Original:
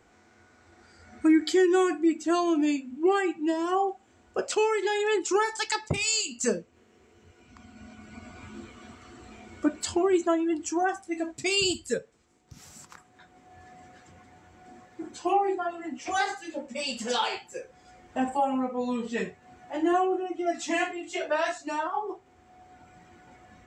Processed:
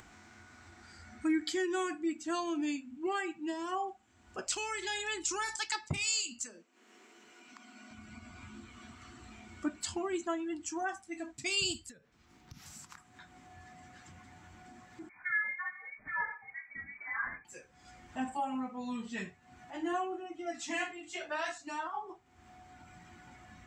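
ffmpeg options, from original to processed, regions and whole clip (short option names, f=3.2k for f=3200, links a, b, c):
-filter_complex "[0:a]asettb=1/sr,asplit=3[a][b][c];[a]atrim=end=4.474[d];[b]atrim=start=4.47:end=5.56,asetpts=PTS-STARTPTS,afade=t=in:d=0.004:c=qsin,afade=t=out:st=1.086:d=0.004:c=qsin,highshelf=f=2.4k:g=10.5,acompressor=threshold=-26dB:ratio=2:attack=3.2:release=140:knee=1:detection=peak,aeval=exprs='val(0)+0.00126*(sin(2*PI*60*n/s)+sin(2*PI*2*60*n/s)/2+sin(2*PI*3*60*n/s)/3+sin(2*PI*4*60*n/s)/4+sin(2*PI*5*60*n/s)/5)':c=same[e];[c]atrim=start=5.556[f];[d][e]acrossfade=d=0.004:c1=hsin:c2=qsin[g];[g][f]acrossfade=d=0.004:c1=qsin:c2=hsin,asettb=1/sr,asplit=3[h][i][j];[h]atrim=end=6.434[k];[i]atrim=start=6.43:end=7.91,asetpts=PTS-STARTPTS,afade=t=in:d=0.004:c=qsin,afade=t=out:st=1.476:d=0.004:c=qsin,highpass=f=270:w=0.5412,highpass=f=270:w=1.3066,acompressor=threshold=-34dB:ratio=16:attack=3.2:release=140:knee=1:detection=peak[l];[j]atrim=start=7.906[m];[k][l]acrossfade=d=0.004:c1=hsin:c2=qsin[n];[n][m]acrossfade=d=0.004:c1=qsin:c2=hsin,asettb=1/sr,asplit=3[o][p][q];[o]atrim=end=11.894[r];[p]atrim=start=11.89:end=12.66,asetpts=PTS-STARTPTS,afade=t=in:d=0.004:c=qsin,afade=t=out:st=0.766:d=0.004:c=qsin,equalizer=f=8.1k:w=1.7:g=-12.5,acompressor=threshold=-41dB:ratio=10:attack=3.2:release=140:knee=1:detection=peak[s];[q]atrim=start=12.656[t];[r][s]acrossfade=d=0.004:c1=hsin:c2=qsin[u];[u][t]acrossfade=d=0.004:c1=qsin:c2=hsin,asettb=1/sr,asplit=3[v][w][x];[v]atrim=end=15.094[y];[w]atrim=start=15.09:end=17.45,asetpts=PTS-STARTPTS,afade=t=in:d=0.004:c=qsin,afade=t=out:st=2.356:d=0.004:c=qsin,equalizer=f=280:t=o:w=2:g=-6.5,lowpass=f=2.1k:t=q:w=0.5098,lowpass=f=2.1k:t=q:w=0.6013,lowpass=f=2.1k:t=q:w=0.9,lowpass=f=2.1k:t=q:w=2.563,afreqshift=-2500[z];[x]atrim=start=17.446[aa];[y][z]acrossfade=d=0.004:c1=hsin:c2=qsin[ab];[ab][aa]acrossfade=d=0.004:c1=qsin:c2=hsin,acompressor=mode=upward:threshold=-38dB:ratio=2.5,equalizer=f=480:w=1.6:g=-12.5,volume=-5.5dB"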